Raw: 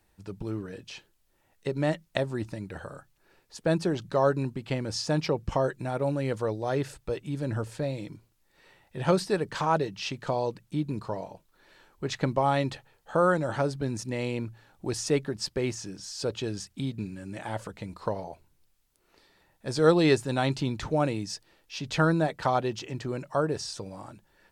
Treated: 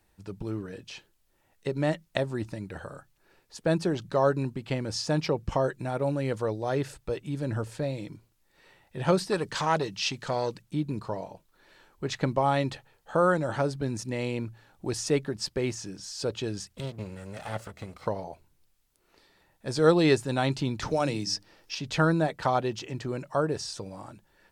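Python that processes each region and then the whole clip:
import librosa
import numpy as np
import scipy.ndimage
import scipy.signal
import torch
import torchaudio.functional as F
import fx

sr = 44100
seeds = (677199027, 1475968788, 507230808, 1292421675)

y = fx.chain(x, sr, fx.peak_eq(hz=6000.0, db=7.0, octaves=2.4),
    fx.transformer_sat(knee_hz=760.0), at=(9.32, 10.62))
y = fx.chain(y, sr, fx.lower_of_two(delay_ms=1.5),
    fx.highpass(hz=56.0, slope=12), at=(16.76, 18.07))
y = fx.chain(y, sr, fx.peak_eq(hz=5300.0, db=10.0, octaves=0.37),
    fx.hum_notches(base_hz=50, count=8),
    fx.band_squash(depth_pct=40), at=(20.82, 21.75))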